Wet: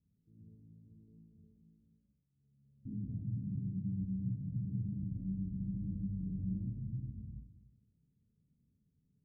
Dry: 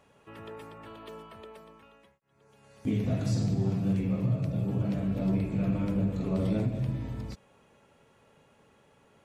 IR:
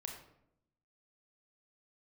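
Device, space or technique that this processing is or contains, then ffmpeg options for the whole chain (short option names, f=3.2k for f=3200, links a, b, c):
club heard from the street: -filter_complex "[0:a]alimiter=limit=-22dB:level=0:latency=1:release=43,lowpass=f=220:w=0.5412,lowpass=f=220:w=1.3066[a];[1:a]atrim=start_sample=2205[b];[a][b]afir=irnorm=-1:irlink=0,volume=-5dB"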